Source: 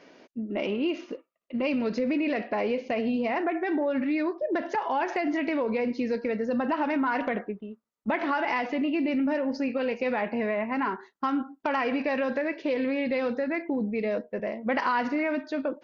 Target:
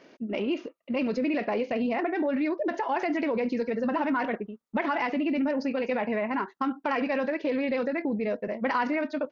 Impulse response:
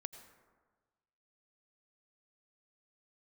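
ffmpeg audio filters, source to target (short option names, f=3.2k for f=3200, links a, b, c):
-af "atempo=1.7"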